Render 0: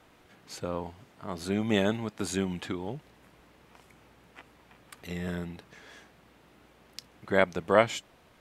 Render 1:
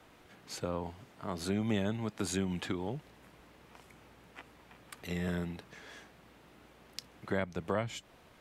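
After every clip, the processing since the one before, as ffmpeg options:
-filter_complex "[0:a]acrossover=split=170[a][b];[b]acompressor=threshold=-32dB:ratio=5[c];[a][c]amix=inputs=2:normalize=0"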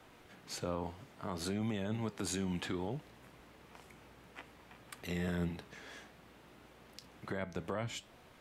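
-af "alimiter=level_in=3.5dB:limit=-24dB:level=0:latency=1:release=36,volume=-3.5dB,flanger=delay=7.7:depth=7.5:regen=82:speed=0.6:shape=sinusoidal,volume=4.5dB"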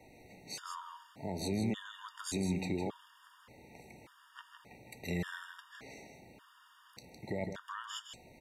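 -af "aecho=1:1:159:0.473,afftfilt=real='re*gt(sin(2*PI*0.86*pts/sr)*(1-2*mod(floor(b*sr/1024/930),2)),0)':imag='im*gt(sin(2*PI*0.86*pts/sr)*(1-2*mod(floor(b*sr/1024/930),2)),0)':win_size=1024:overlap=0.75,volume=2.5dB"

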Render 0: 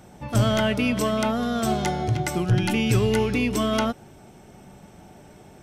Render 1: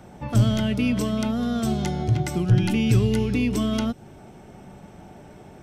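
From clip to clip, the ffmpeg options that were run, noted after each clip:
-filter_complex "[0:a]highshelf=f=3.8k:g=-8,acrossover=split=320|3000[a][b][c];[b]acompressor=threshold=-36dB:ratio=6[d];[a][d][c]amix=inputs=3:normalize=0,volume=3dB"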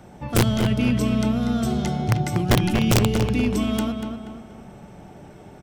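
-filter_complex "[0:a]aeval=exprs='(mod(3.55*val(0)+1,2)-1)/3.55':c=same,asplit=2[a][b];[b]adelay=240,lowpass=f=3.3k:p=1,volume=-6dB,asplit=2[c][d];[d]adelay=240,lowpass=f=3.3k:p=1,volume=0.45,asplit=2[e][f];[f]adelay=240,lowpass=f=3.3k:p=1,volume=0.45,asplit=2[g][h];[h]adelay=240,lowpass=f=3.3k:p=1,volume=0.45,asplit=2[i][j];[j]adelay=240,lowpass=f=3.3k:p=1,volume=0.45[k];[c][e][g][i][k]amix=inputs=5:normalize=0[l];[a][l]amix=inputs=2:normalize=0"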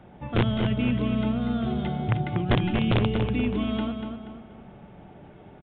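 -af "aresample=8000,aresample=44100,volume=-4dB"

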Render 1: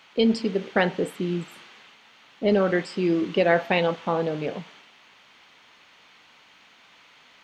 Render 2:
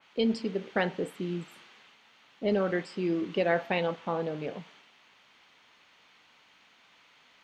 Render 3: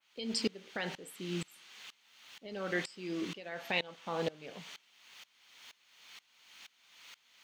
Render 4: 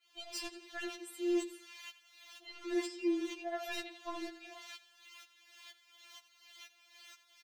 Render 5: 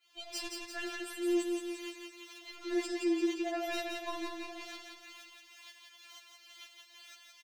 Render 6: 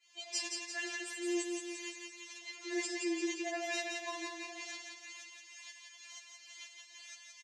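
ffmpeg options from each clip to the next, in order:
-af "adynamicequalizer=threshold=0.01:dfrequency=2900:dqfactor=0.7:tfrequency=2900:tqfactor=0.7:attack=5:release=100:ratio=0.375:range=1.5:mode=cutabove:tftype=highshelf,volume=-6.5dB"
-af "crystalizer=i=7.5:c=0,alimiter=limit=-16.5dB:level=0:latency=1:release=135,aeval=exprs='val(0)*pow(10,-23*if(lt(mod(-2.1*n/s,1),2*abs(-2.1)/1000),1-mod(-2.1*n/s,1)/(2*abs(-2.1)/1000),(mod(-2.1*n/s,1)-2*abs(-2.1)/1000)/(1-2*abs(-2.1)/1000))/20)':c=same"
-af "aecho=1:1:88|176|264:0.15|0.0584|0.0228,asoftclip=type=tanh:threshold=-33.5dB,afftfilt=real='re*4*eq(mod(b,16),0)':imag='im*4*eq(mod(b,16),0)':win_size=2048:overlap=0.75,volume=3dB"
-af "aecho=1:1:172|344|516|688|860|1032|1204:0.631|0.347|0.191|0.105|0.0577|0.0318|0.0175,volume=1.5dB"
-af "crystalizer=i=1:c=0,highpass=420,equalizer=f=790:t=q:w=4:g=-5,equalizer=f=1.4k:t=q:w=4:g=-10,equalizer=f=1.9k:t=q:w=4:g=8,equalizer=f=3.5k:t=q:w=4:g=-4,equalizer=f=6.8k:t=q:w=4:g=7,lowpass=f=7.7k:w=0.5412,lowpass=f=7.7k:w=1.3066"

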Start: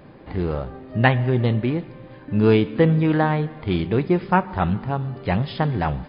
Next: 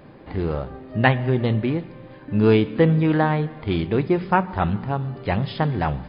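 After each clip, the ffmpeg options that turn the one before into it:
-af "bandreject=f=60:t=h:w=6,bandreject=f=120:t=h:w=6,bandreject=f=180:t=h:w=6"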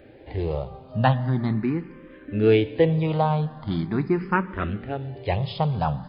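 -filter_complex "[0:a]asplit=2[a][b];[b]afreqshift=0.41[c];[a][c]amix=inputs=2:normalize=1"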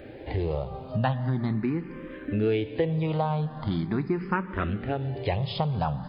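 -af "acompressor=threshold=-32dB:ratio=3,volume=5.5dB"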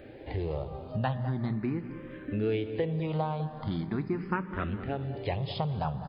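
-filter_complex "[0:a]asplit=2[a][b];[b]adelay=204,lowpass=f=1.2k:p=1,volume=-11.5dB,asplit=2[c][d];[d]adelay=204,lowpass=f=1.2k:p=1,volume=0.47,asplit=2[e][f];[f]adelay=204,lowpass=f=1.2k:p=1,volume=0.47,asplit=2[g][h];[h]adelay=204,lowpass=f=1.2k:p=1,volume=0.47,asplit=2[i][j];[j]adelay=204,lowpass=f=1.2k:p=1,volume=0.47[k];[a][c][e][g][i][k]amix=inputs=6:normalize=0,volume=-4.5dB"

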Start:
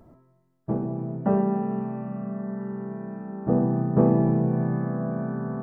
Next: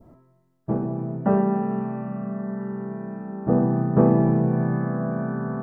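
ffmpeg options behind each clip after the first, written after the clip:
-af "adynamicequalizer=threshold=0.00562:dfrequency=1500:dqfactor=1.3:tfrequency=1500:tqfactor=1.3:attack=5:release=100:ratio=0.375:range=2:mode=boostabove:tftype=bell,volume=2dB"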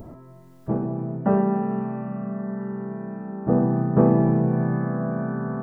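-af "acompressor=mode=upward:threshold=-31dB:ratio=2.5"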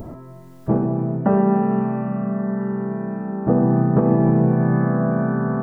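-af "alimiter=limit=-13dB:level=0:latency=1:release=265,volume=6.5dB"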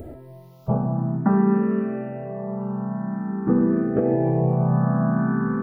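-filter_complex "[0:a]asplit=2[a][b];[b]afreqshift=0.5[c];[a][c]amix=inputs=2:normalize=1"

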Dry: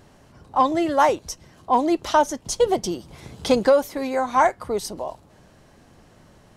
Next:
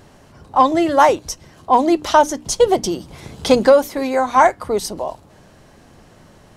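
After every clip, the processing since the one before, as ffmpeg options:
-af "bandreject=f=60:t=h:w=6,bandreject=f=120:t=h:w=6,bandreject=f=180:t=h:w=6,bandreject=f=240:t=h:w=6,bandreject=f=300:t=h:w=6,volume=5.5dB"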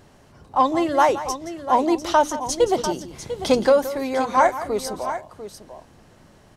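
-af "aecho=1:1:172|697:0.2|0.266,volume=-5dB"

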